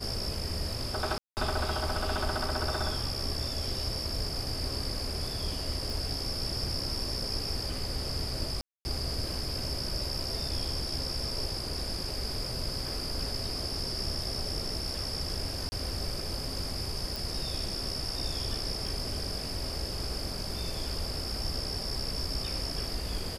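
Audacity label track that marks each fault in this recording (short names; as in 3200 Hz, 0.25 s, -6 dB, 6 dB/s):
1.180000	1.370000	gap 0.189 s
5.900000	5.900000	pop
8.610000	8.850000	gap 0.24 s
15.690000	15.720000	gap 30 ms
17.160000	17.160000	pop
18.860000	18.860000	gap 3.6 ms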